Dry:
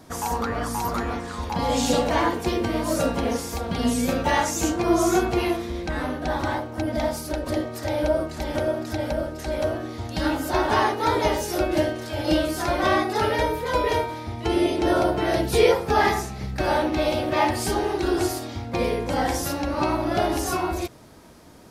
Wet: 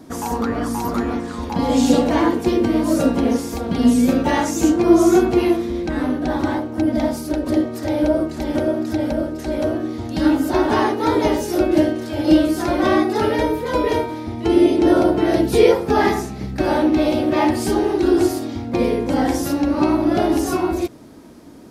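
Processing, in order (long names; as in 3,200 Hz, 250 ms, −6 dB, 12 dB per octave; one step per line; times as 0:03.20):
parametric band 280 Hz +11 dB 1.2 octaves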